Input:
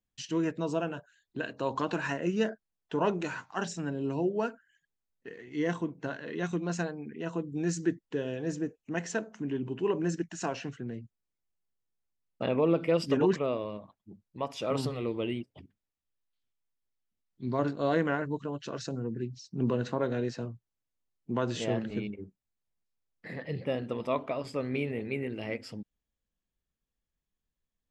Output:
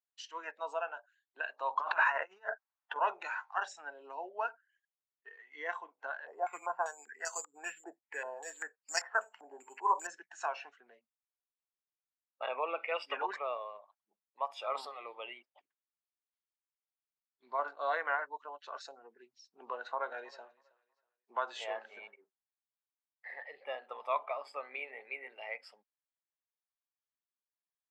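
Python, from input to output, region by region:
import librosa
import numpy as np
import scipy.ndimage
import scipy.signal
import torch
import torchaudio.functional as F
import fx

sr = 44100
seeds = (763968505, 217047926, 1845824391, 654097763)

y = fx.chain(x, sr, fx.over_compress(threshold_db=-35.0, ratio=-0.5),
    fx.peak_eq(hz=1100.0, db=8.0, octaves=1.7), at=(1.81, 2.96))
y = fx.chain(y, sr, fx.resample_bad(factor=6, down='filtered', up='zero_stuff'),
    fx.filter_held_lowpass(hz=5.1, low_hz=730.0, high_hz=5000.0), at=(6.27, 10.07))
y = fx.chain(y, sr, fx.lowpass(hz=3700.0, slope=6),
    fx.peak_eq(hz=2600.0, db=7.5, octaves=0.66), at=(12.63, 13.2))
y = fx.chain(y, sr, fx.highpass(hz=110.0, slope=12),
    fx.echo_feedback(ms=321, feedback_pct=30, wet_db=-19), at=(19.73, 22.14))
y = fx.lowpass(y, sr, hz=1200.0, slope=6)
y = fx.noise_reduce_blind(y, sr, reduce_db=9)
y = scipy.signal.sosfilt(scipy.signal.butter(4, 810.0, 'highpass', fs=sr, output='sos'), y)
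y = y * librosa.db_to_amplitude(5.5)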